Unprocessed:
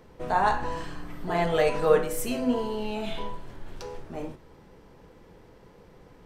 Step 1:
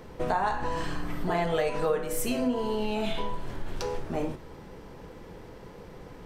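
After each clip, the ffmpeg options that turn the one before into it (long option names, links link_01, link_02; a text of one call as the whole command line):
ffmpeg -i in.wav -af "acompressor=threshold=-32dB:ratio=5,volume=7dB" out.wav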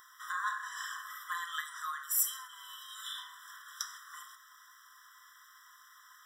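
ffmpeg -i in.wav -af "aexciter=amount=3.1:drive=3.2:freq=5400,afftfilt=real='re*eq(mod(floor(b*sr/1024/1000),2),1)':imag='im*eq(mod(floor(b*sr/1024/1000),2),1)':win_size=1024:overlap=0.75" out.wav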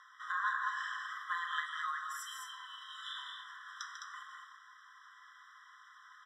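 ffmpeg -i in.wav -filter_complex "[0:a]highpass=800,lowpass=3100,asplit=2[link_01][link_02];[link_02]aecho=0:1:145.8|209.9:0.355|0.562[link_03];[link_01][link_03]amix=inputs=2:normalize=0,volume=1dB" out.wav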